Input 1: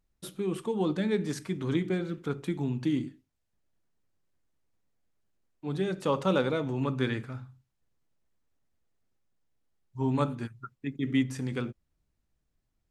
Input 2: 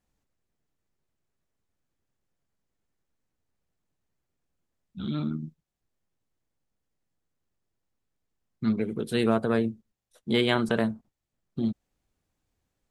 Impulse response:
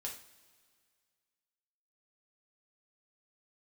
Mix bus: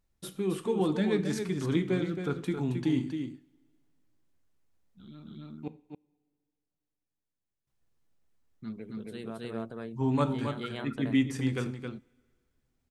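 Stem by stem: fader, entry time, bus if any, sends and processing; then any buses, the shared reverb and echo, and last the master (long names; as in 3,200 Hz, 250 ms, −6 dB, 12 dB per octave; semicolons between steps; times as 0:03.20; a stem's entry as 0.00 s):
−2.0 dB, 0.00 s, muted 0:05.68–0:07.67, send −5.5 dB, echo send −5 dB, no processing
−12.0 dB, 0.00 s, no send, echo send −3.5 dB, automatic ducking −9 dB, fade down 1.65 s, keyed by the first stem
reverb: on, pre-delay 3 ms
echo: single-tap delay 270 ms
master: no processing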